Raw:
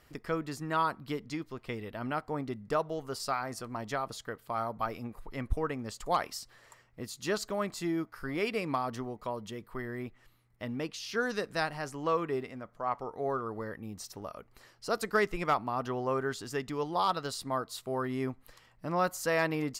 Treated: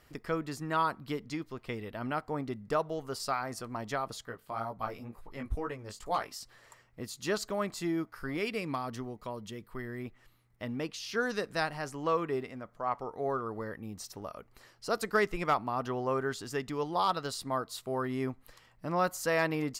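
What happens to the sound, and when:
4.25–6.41 chorus 2.1 Hz, delay 15.5 ms, depth 4.9 ms
8.37–10.05 bell 790 Hz -4.5 dB 2.1 oct

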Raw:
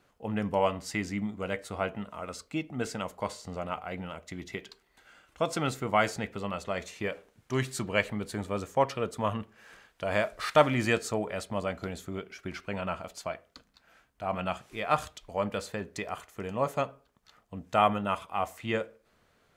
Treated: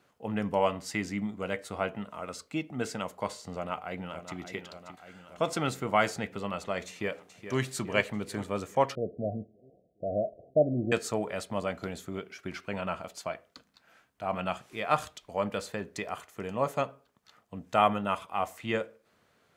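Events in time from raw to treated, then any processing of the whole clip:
3.55–4.37 echo throw 0.58 s, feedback 70%, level -10.5 dB
6.87–7.59 echo throw 0.42 s, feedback 60%, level -10.5 dB
8.95–10.92 Chebyshev low-pass 730 Hz, order 10
whole clip: HPF 97 Hz

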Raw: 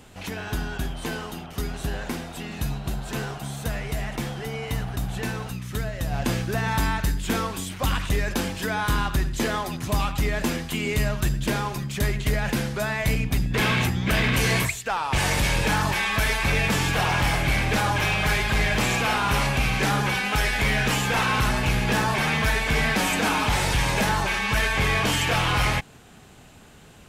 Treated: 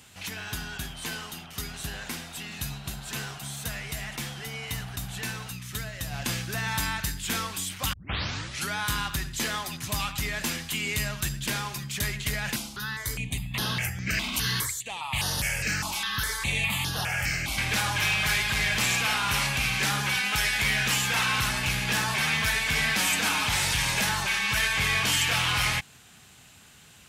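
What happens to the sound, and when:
7.93 tape start 0.82 s
12.56–17.58 step phaser 4.9 Hz 470–7700 Hz
whole clip: HPF 70 Hz 12 dB/oct; passive tone stack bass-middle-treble 5-5-5; gain +9 dB

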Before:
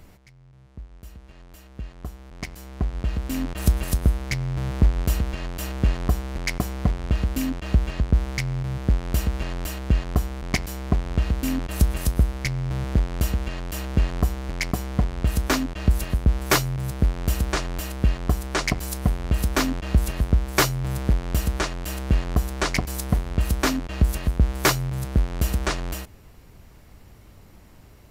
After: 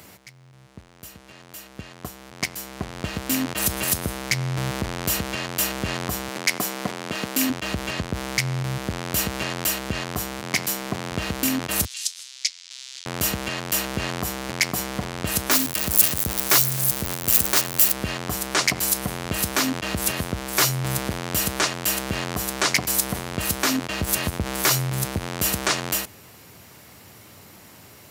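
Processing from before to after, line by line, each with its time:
6.28–7.5 HPF 200 Hz
10.39–11.11 HPF 94 Hz 24 dB/oct
11.85–13.06 Butterworth band-pass 5100 Hz, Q 1.2
15.51–17.93 switching spikes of -17.5 dBFS
23.74–25.18 transient shaper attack +12 dB, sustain +2 dB
whole clip: HPF 88 Hz 24 dB/oct; limiter -18 dBFS; tilt +2 dB/oct; gain +7 dB

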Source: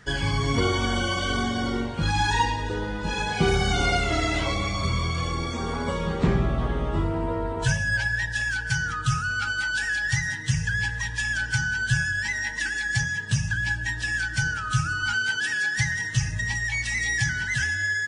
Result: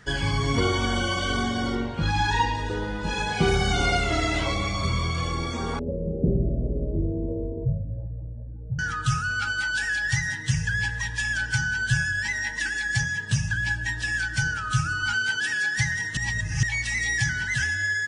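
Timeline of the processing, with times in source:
1.75–2.55 air absorption 62 m
5.79–8.79 Chebyshev low-pass 590 Hz, order 5
16.17–16.63 reverse

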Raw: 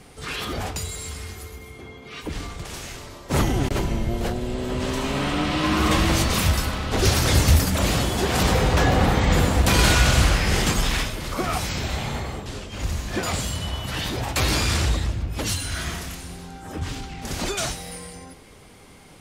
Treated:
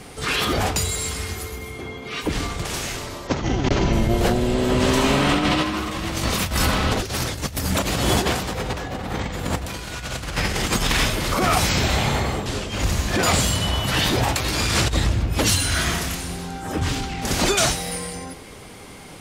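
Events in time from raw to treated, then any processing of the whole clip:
3.27–3.93 steep low-pass 6600 Hz 48 dB/oct
whole clip: low shelf 66 Hz -5 dB; de-hum 77.35 Hz, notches 3; negative-ratio compressor -25 dBFS, ratio -0.5; gain +5 dB

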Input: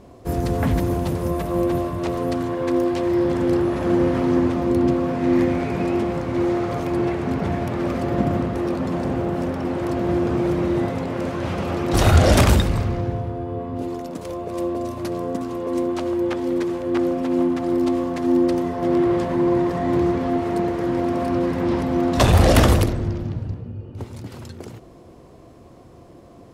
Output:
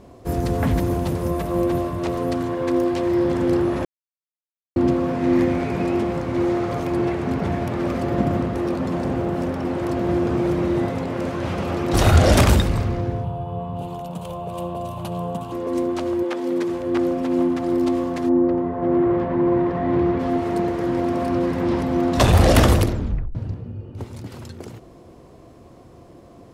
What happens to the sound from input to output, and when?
3.85–4.76 mute
13.24–15.52 EQ curve 100 Hz 0 dB, 170 Hz +10 dB, 270 Hz -14 dB, 850 Hz +6 dB, 2000 Hz -11 dB, 2900 Hz +6 dB, 5300 Hz -9 dB, 8200 Hz -1 dB, 15000 Hz +2 dB
16.23–16.68 HPF 370 Hz -> 120 Hz
18.28–20.18 LPF 1200 Hz -> 3200 Hz
22.93 tape stop 0.42 s

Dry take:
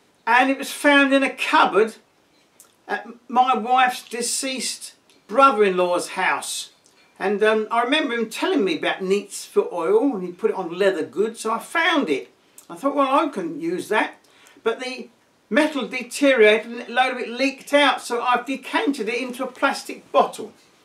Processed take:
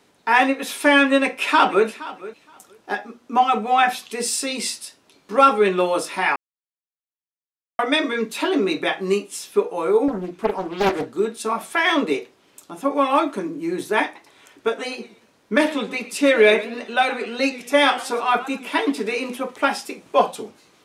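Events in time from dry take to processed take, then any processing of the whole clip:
1.08–1.86 echo throw 0.47 s, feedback 15%, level -17.5 dB
6.36–7.79 mute
10.08–11.17 Doppler distortion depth 0.75 ms
14.03–19.36 warbling echo 0.117 s, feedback 34%, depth 189 cents, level -17 dB

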